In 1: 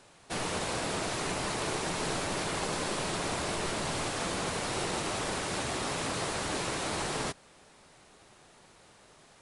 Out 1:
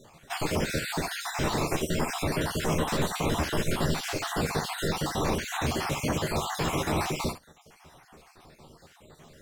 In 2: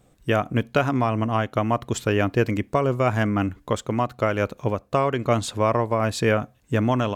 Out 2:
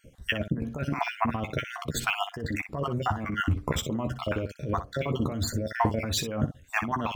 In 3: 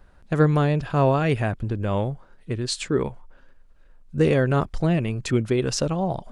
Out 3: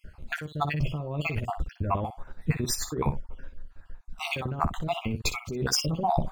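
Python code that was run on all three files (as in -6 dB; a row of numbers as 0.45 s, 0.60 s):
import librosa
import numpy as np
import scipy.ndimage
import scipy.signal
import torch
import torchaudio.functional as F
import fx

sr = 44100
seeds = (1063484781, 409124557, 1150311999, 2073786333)

p1 = fx.spec_dropout(x, sr, seeds[0], share_pct=51)
p2 = fx.low_shelf(p1, sr, hz=320.0, db=7.5)
p3 = fx.over_compress(p2, sr, threshold_db=-27.0, ratio=-1.0)
p4 = p3 + fx.room_early_taps(p3, sr, ms=(13, 61), db=(-6.5, -11.0), dry=0)
p5 = np.interp(np.arange(len(p4)), np.arange(len(p4))[::2], p4[::2])
y = p5 * 10.0 ** (-30 / 20.0) / np.sqrt(np.mean(np.square(p5)))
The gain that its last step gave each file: +4.0 dB, -2.0 dB, -2.0 dB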